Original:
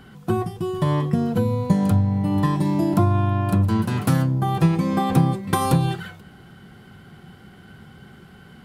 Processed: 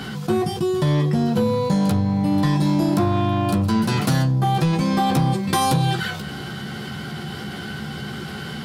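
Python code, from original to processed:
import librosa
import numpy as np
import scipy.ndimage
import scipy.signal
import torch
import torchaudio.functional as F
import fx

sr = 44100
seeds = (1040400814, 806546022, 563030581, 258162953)

p1 = scipy.signal.sosfilt(scipy.signal.butter(2, 94.0, 'highpass', fs=sr, output='sos'), x)
p2 = 10.0 ** (-17.0 / 20.0) * (np.abs((p1 / 10.0 ** (-17.0 / 20.0) + 3.0) % 4.0 - 2.0) - 1.0)
p3 = p1 + (p2 * 10.0 ** (-7.5 / 20.0))
p4 = fx.peak_eq(p3, sr, hz=4800.0, db=8.5, octaves=1.3)
p5 = fx.doubler(p4, sr, ms=14.0, db=-6)
p6 = fx.env_flatten(p5, sr, amount_pct=50)
y = p6 * 10.0 ** (-4.5 / 20.0)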